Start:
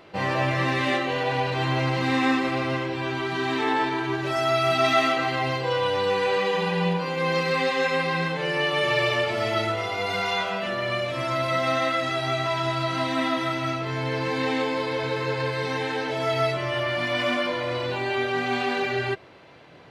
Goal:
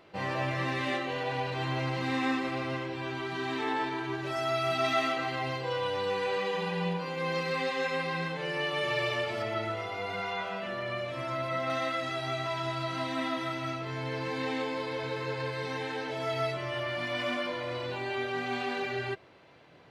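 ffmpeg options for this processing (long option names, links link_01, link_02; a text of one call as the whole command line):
ffmpeg -i in.wav -filter_complex "[0:a]asettb=1/sr,asplit=3[link_01][link_02][link_03];[link_01]atrim=end=9.424[link_04];[link_02]atrim=start=9.42:end=11.7,asetpts=PTS-STARTPTS,afade=type=in:duration=0.004:curve=qsin,afade=type=out:start_time=2.276:duration=0.004:curve=qsin,acrossover=split=2800[link_05][link_06];[link_06]acompressor=threshold=-42dB:ratio=4:attack=1:release=60[link_07];[link_05][link_07]amix=inputs=2:normalize=0[link_08];[link_03]atrim=start=11.696[link_09];[link_04][link_08]acrossfade=duration=0.004:curve1=hsin:curve2=qsin[link_10];[link_10][link_09]acrossfade=duration=0.004:curve1=qsin:curve2=hsin,volume=-7.5dB" out.wav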